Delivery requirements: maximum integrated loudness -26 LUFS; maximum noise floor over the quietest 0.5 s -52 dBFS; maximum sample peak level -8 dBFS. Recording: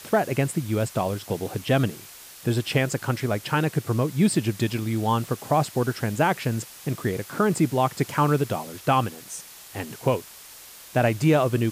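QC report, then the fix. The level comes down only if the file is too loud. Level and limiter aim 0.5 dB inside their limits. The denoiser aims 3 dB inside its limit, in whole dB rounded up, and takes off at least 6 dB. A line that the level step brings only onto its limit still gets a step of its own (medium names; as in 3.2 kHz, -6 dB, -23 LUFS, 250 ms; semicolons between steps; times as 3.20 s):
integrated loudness -24.5 LUFS: fail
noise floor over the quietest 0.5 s -45 dBFS: fail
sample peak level -10.0 dBFS: pass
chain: noise reduction 8 dB, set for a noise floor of -45 dBFS; trim -2 dB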